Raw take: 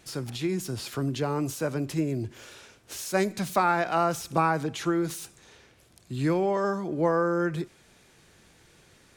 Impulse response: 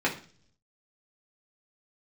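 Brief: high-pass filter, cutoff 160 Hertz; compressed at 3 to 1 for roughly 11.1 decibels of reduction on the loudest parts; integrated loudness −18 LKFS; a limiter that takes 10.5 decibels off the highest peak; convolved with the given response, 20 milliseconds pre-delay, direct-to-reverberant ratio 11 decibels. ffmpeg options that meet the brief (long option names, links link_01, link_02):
-filter_complex "[0:a]highpass=160,acompressor=threshold=-34dB:ratio=3,alimiter=level_in=6dB:limit=-24dB:level=0:latency=1,volume=-6dB,asplit=2[link_01][link_02];[1:a]atrim=start_sample=2205,adelay=20[link_03];[link_02][link_03]afir=irnorm=-1:irlink=0,volume=-23dB[link_04];[link_01][link_04]amix=inputs=2:normalize=0,volume=21dB"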